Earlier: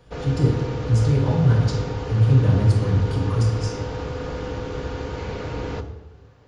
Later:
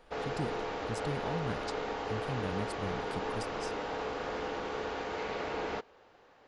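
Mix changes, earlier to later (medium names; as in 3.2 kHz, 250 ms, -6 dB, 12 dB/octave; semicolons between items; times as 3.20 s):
background: add tone controls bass -14 dB, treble -5 dB; reverb: off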